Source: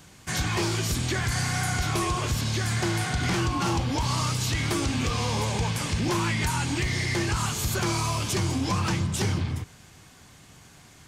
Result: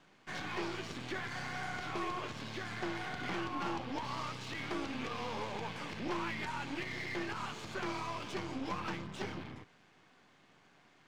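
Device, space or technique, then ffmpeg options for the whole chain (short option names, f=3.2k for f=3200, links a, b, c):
crystal radio: -af "highpass=240,lowpass=3k,aeval=exprs='if(lt(val(0),0),0.447*val(0),val(0))':c=same,volume=-6.5dB"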